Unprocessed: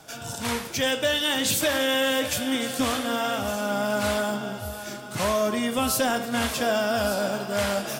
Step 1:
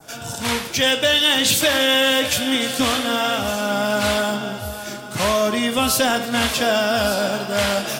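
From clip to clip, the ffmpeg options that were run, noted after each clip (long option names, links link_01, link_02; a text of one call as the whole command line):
ffmpeg -i in.wav -af "adynamicequalizer=threshold=0.0126:dfrequency=3300:dqfactor=0.83:tfrequency=3300:tqfactor=0.83:attack=5:release=100:ratio=0.375:range=2.5:mode=boostabove:tftype=bell,volume=4.5dB" out.wav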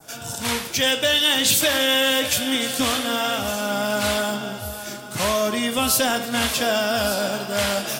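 ffmpeg -i in.wav -af "highshelf=frequency=6700:gain=6,volume=-3dB" out.wav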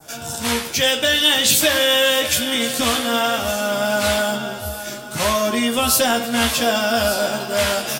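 ffmpeg -i in.wav -filter_complex "[0:a]asplit=2[link_01][link_02];[link_02]adelay=13,volume=-5dB[link_03];[link_01][link_03]amix=inputs=2:normalize=0,volume=1.5dB" out.wav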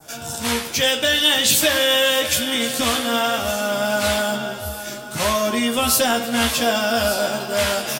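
ffmpeg -i in.wav -filter_complex "[0:a]asplit=2[link_01][link_02];[link_02]adelay=270,highpass=300,lowpass=3400,asoftclip=type=hard:threshold=-12.5dB,volume=-17dB[link_03];[link_01][link_03]amix=inputs=2:normalize=0,volume=-1dB" out.wav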